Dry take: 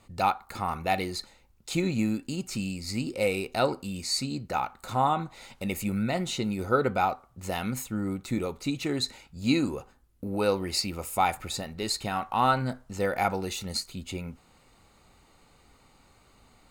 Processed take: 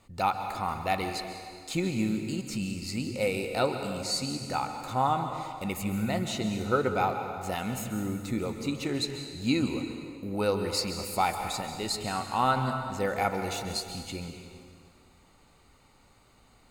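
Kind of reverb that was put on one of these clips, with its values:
dense smooth reverb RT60 2.1 s, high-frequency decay 0.85×, pre-delay 120 ms, DRR 6 dB
level −2 dB

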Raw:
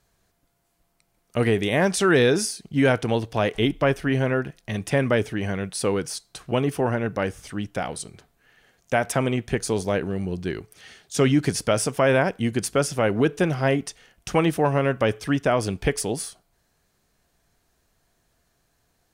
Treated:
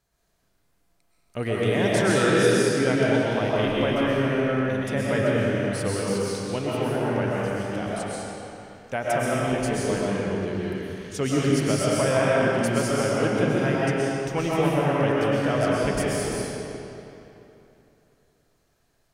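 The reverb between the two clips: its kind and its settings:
comb and all-pass reverb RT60 3 s, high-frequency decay 0.8×, pre-delay 85 ms, DRR −6.5 dB
level −7.5 dB

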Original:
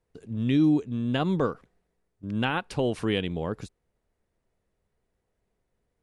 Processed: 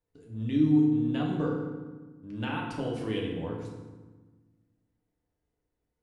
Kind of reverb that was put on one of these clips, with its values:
feedback delay network reverb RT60 1.3 s, low-frequency decay 1.5×, high-frequency decay 0.65×, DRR −2.5 dB
level −11 dB

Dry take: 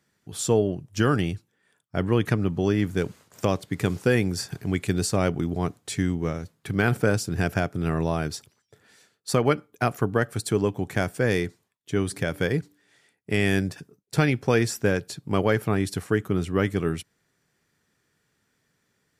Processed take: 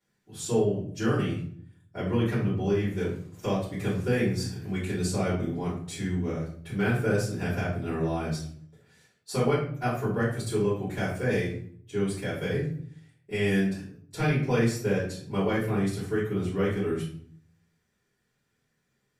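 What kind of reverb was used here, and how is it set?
rectangular room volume 67 cubic metres, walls mixed, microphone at 3.3 metres
level −18 dB

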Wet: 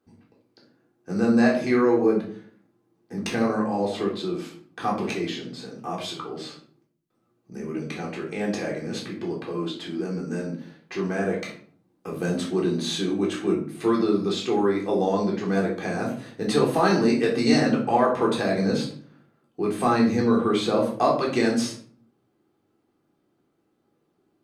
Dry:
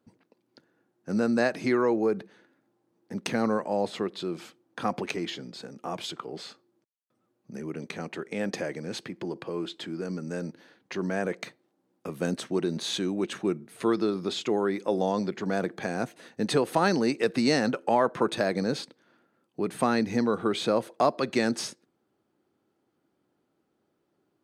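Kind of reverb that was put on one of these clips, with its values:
rectangular room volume 510 cubic metres, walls furnished, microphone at 3.7 metres
level −2.5 dB

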